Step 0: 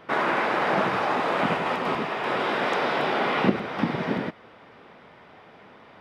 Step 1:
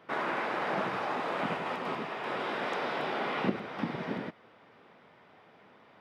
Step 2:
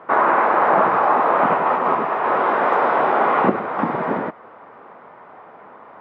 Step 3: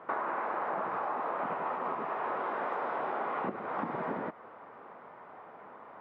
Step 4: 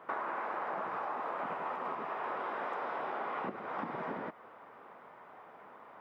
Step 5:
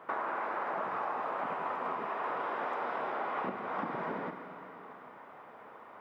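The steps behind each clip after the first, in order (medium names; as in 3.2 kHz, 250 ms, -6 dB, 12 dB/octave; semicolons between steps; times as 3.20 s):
high-pass 87 Hz; trim -8.5 dB
FFT filter 150 Hz 0 dB, 1.1 kHz +13 dB, 4.3 kHz -13 dB; trim +7 dB
compression 6:1, threshold -24 dBFS, peak gain reduction 13 dB; trim -7.5 dB
treble shelf 3.2 kHz +11.5 dB; trim -4.5 dB
Schroeder reverb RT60 3.5 s, combs from 32 ms, DRR 7 dB; trim +1.5 dB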